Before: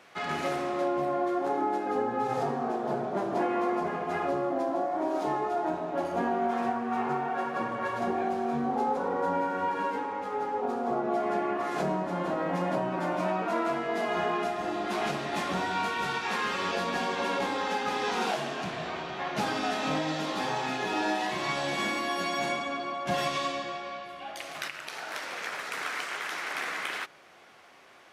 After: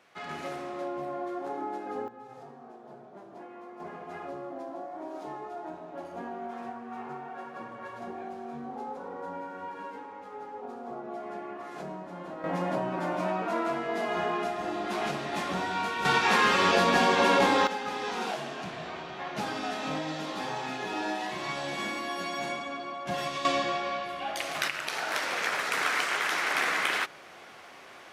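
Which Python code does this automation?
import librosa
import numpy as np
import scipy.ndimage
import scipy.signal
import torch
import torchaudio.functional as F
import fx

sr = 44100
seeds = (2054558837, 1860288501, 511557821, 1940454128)

y = fx.gain(x, sr, db=fx.steps((0.0, -6.5), (2.08, -18.0), (3.8, -10.0), (12.44, -1.0), (16.05, 7.5), (17.67, -3.5), (23.45, 6.0)))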